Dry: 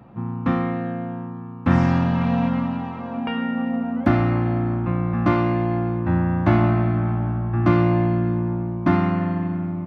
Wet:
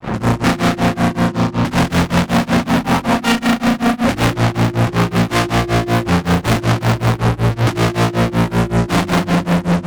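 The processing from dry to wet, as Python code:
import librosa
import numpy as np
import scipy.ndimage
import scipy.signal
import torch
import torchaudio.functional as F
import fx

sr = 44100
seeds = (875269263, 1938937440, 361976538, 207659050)

y = fx.fuzz(x, sr, gain_db=44.0, gate_db=-49.0)
y = fx.granulator(y, sr, seeds[0], grain_ms=203.0, per_s=5.3, spray_ms=32.0, spread_st=0)
y = fx.hum_notches(y, sr, base_hz=50, count=7)
y = y * 10.0 ** (3.0 / 20.0)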